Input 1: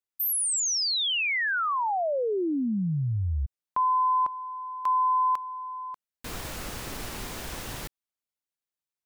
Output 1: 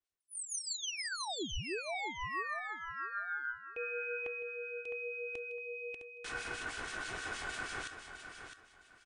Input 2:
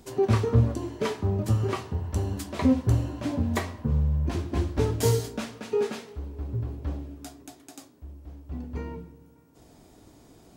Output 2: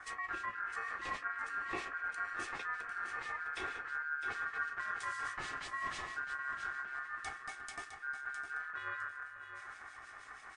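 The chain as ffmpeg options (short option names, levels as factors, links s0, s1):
-filter_complex "[0:a]bandreject=f=60:t=h:w=6,bandreject=f=120:t=h:w=6,bandreject=f=180:t=h:w=6,bandreject=f=240:t=h:w=6,bandreject=f=300:t=h:w=6,bandreject=f=360:t=h:w=6,adynamicequalizer=threshold=0.001:dfrequency=2800:dqfactor=7.8:tfrequency=2800:tqfactor=7.8:attack=5:release=100:ratio=0.375:range=2:mode=cutabove:tftype=bell,aeval=exprs='val(0)*sin(2*PI*1500*n/s)':c=same,bass=f=250:g=3,treble=f=4000:g=-4,areverse,acompressor=threshold=0.00794:ratio=8:attack=6.1:release=60:knee=1:detection=rms,areverse,aecho=1:1:2.7:0.41,acrossover=split=2200[s0][s1];[s0]aeval=exprs='val(0)*(1-0.7/2+0.7/2*cos(2*PI*6.3*n/s))':c=same[s2];[s1]aeval=exprs='val(0)*(1-0.7/2-0.7/2*cos(2*PI*6.3*n/s))':c=same[s3];[s2][s3]amix=inputs=2:normalize=0,aecho=1:1:659|1318|1977:0.376|0.094|0.0235,volume=2.24" -ar 22050 -c:a libmp3lame -b:a 56k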